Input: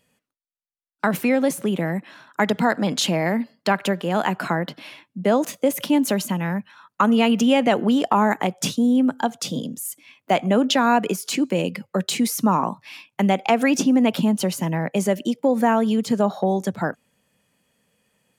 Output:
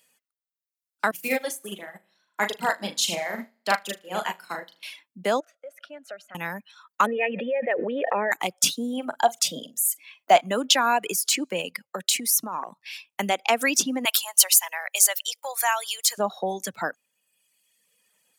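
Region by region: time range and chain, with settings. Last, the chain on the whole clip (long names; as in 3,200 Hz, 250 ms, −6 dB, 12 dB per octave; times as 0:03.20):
0:01.11–0:04.83: flutter between parallel walls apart 6.7 metres, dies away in 0.64 s + expander for the loud parts 2.5 to 1, over −27 dBFS
0:05.40–0:06.35: pair of resonant band-passes 960 Hz, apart 1.1 octaves + downward compressor 2 to 1, threshold −32 dBFS
0:07.06–0:08.32: formant resonators in series e + envelope flattener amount 100%
0:08.93–0:10.41: parametric band 690 Hz +9.5 dB 0.43 octaves + double-tracking delay 44 ms −12 dB
0:11.68–0:12.86: downward compressor 8 to 1, threshold −21 dBFS + transient designer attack +1 dB, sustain −6 dB
0:14.05–0:16.18: high-pass filter 670 Hz 24 dB per octave + spectral tilt +3 dB per octave
whole clip: reverb reduction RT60 1.2 s; high-pass filter 780 Hz 6 dB per octave; high-shelf EQ 4,200 Hz +9 dB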